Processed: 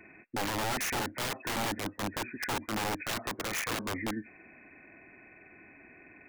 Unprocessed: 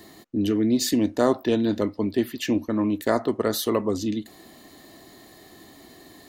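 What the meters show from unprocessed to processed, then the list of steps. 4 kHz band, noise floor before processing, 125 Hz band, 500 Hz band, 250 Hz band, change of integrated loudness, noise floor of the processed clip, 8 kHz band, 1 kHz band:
-3.5 dB, -50 dBFS, -8.5 dB, -14.5 dB, -16.0 dB, -9.5 dB, -56 dBFS, -3.5 dB, -2.5 dB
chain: knee-point frequency compression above 1.4 kHz 4:1; integer overflow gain 19 dB; trim -8.5 dB

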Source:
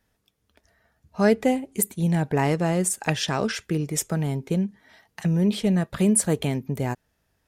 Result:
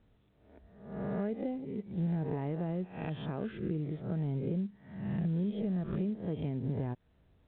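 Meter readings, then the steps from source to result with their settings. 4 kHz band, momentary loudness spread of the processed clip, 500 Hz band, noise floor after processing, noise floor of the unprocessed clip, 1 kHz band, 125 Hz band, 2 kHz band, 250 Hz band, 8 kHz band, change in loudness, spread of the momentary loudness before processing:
-23.5 dB, 7 LU, -13.0 dB, -68 dBFS, -73 dBFS, -16.0 dB, -8.5 dB, -20.0 dB, -10.0 dB, under -40 dB, -11.5 dB, 8 LU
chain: reverse spectral sustain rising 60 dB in 0.66 s; compression 5:1, threshold -36 dBFS, peak gain reduction 20 dB; level-controlled noise filter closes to 1.5 kHz, open at -32 dBFS; tilt shelf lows +9 dB, about 870 Hz; trim -4 dB; µ-law 64 kbps 8 kHz

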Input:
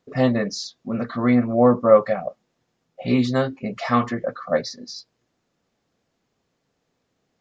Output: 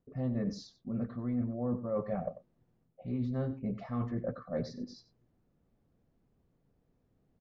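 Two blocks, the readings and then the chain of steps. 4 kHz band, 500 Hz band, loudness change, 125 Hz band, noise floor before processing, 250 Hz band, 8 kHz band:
-20.5 dB, -18.0 dB, -15.5 dB, -8.5 dB, -74 dBFS, -13.0 dB, no reading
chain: tilt EQ -4.5 dB/octave; reverse; compression 6:1, threshold -23 dBFS, peak gain reduction 18 dB; reverse; echo from a far wall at 16 m, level -14 dB; trim -9 dB

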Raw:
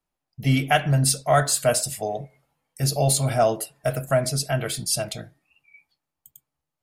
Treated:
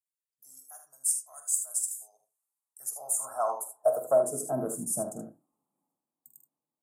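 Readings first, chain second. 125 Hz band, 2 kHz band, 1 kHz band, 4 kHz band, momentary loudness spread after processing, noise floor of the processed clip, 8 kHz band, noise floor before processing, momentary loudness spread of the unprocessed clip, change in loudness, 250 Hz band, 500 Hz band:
-26.0 dB, under -25 dB, -10.5 dB, under -25 dB, 17 LU, under -85 dBFS, -4.5 dB, -85 dBFS, 10 LU, -7.0 dB, -13.0 dB, -6.0 dB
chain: elliptic band-stop 1.1–7.6 kHz, stop band 50 dB; high-pass sweep 4 kHz -> 240 Hz, 2.33–4.69 s; early reflections 46 ms -10 dB, 77 ms -9 dB; trim -5 dB

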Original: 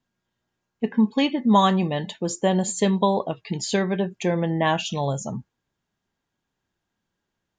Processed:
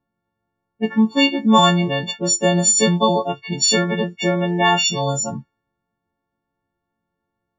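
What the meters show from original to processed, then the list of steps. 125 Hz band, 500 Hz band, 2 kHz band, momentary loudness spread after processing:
+4.0 dB, +4.0 dB, +9.0 dB, 9 LU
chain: partials quantised in pitch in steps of 4 st; level-controlled noise filter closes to 990 Hz, open at -19 dBFS; trim +3.5 dB

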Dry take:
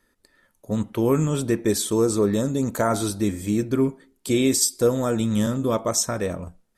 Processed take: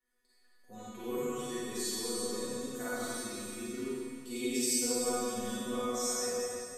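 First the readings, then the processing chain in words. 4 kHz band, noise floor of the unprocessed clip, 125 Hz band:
-7.5 dB, -68 dBFS, -25.5 dB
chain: bass shelf 490 Hz -6 dB; chord resonator B3 fifth, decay 0.37 s; Schroeder reverb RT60 2.4 s, DRR -9.5 dB

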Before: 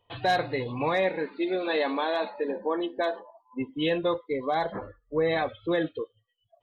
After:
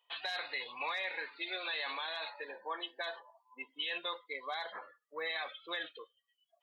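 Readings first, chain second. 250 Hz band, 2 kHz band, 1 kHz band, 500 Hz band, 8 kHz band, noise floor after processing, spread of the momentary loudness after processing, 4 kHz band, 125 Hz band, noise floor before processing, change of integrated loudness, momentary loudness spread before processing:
-26.0 dB, -5.0 dB, -12.5 dB, -19.0 dB, no reading, -83 dBFS, 12 LU, -1.5 dB, under -35 dB, -74 dBFS, -10.5 dB, 10 LU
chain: high-pass 1.3 kHz 12 dB/octave; dynamic bell 3.5 kHz, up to +5 dB, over -46 dBFS, Q 0.88; peak limiter -28.5 dBFS, peak gain reduction 13 dB

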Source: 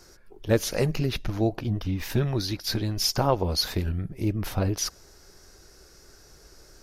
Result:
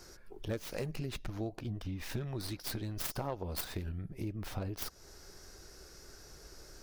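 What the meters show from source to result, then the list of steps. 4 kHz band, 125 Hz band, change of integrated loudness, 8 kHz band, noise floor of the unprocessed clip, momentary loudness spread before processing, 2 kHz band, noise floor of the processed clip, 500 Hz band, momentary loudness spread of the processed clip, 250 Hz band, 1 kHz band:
-15.5 dB, -12.5 dB, -13.0 dB, -13.0 dB, -54 dBFS, 6 LU, -10.5 dB, -55 dBFS, -14.0 dB, 15 LU, -12.5 dB, -13.5 dB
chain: tracing distortion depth 0.27 ms; compression 3:1, threshold -38 dBFS, peak gain reduction 16.5 dB; trim -1 dB

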